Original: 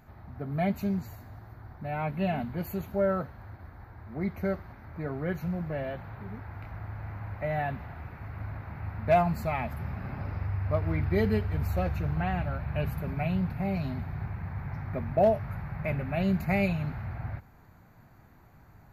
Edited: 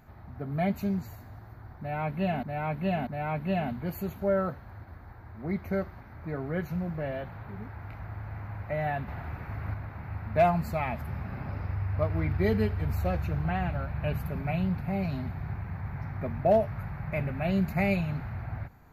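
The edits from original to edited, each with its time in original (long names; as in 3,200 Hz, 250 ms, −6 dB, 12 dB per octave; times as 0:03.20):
0:01.79–0:02.43: repeat, 3 plays
0:07.80–0:08.46: clip gain +4 dB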